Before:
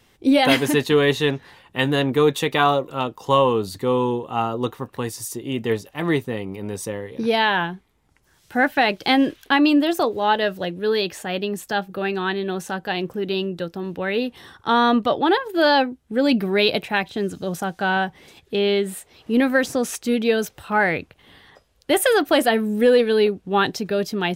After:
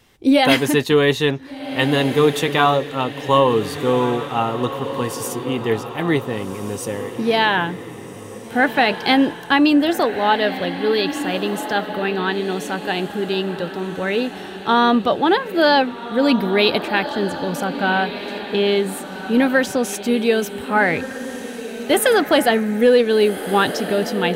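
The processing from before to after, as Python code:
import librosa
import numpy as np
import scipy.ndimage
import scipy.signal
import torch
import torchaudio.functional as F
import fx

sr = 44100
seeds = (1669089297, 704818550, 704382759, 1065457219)

y = fx.echo_diffused(x, sr, ms=1536, feedback_pct=42, wet_db=-10.5)
y = y * librosa.db_to_amplitude(2.0)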